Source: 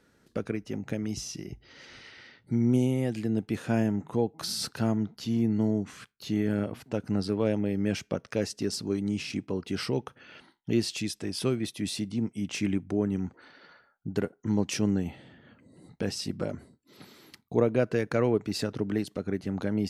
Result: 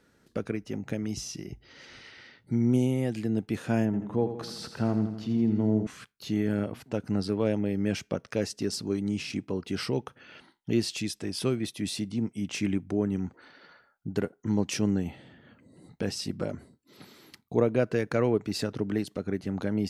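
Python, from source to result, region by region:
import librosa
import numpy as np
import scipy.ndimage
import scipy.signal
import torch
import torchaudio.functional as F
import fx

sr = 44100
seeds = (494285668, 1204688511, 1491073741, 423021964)

y = fx.chain(x, sr, fx.lowpass(hz=1900.0, slope=6),
    fx.echo_feedback(ms=83, feedback_pct=57, wet_db=-9.5), at=(3.85, 5.87))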